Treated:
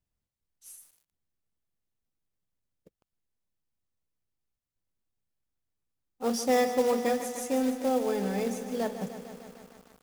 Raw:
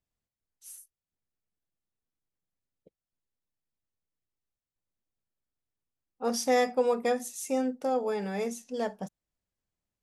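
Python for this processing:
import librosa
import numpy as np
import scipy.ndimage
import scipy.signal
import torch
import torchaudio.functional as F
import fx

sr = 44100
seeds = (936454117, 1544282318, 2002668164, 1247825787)

y = fx.low_shelf(x, sr, hz=260.0, db=7.5)
y = fx.quant_float(y, sr, bits=2)
y = fx.echo_crushed(y, sr, ms=151, feedback_pct=80, bits=8, wet_db=-11)
y = F.gain(torch.from_numpy(y), -1.5).numpy()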